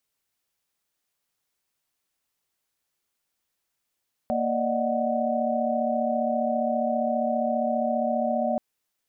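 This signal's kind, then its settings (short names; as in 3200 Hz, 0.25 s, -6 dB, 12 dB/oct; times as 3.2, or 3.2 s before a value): chord A#3/D5/D#5/F#5 sine, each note -28 dBFS 4.28 s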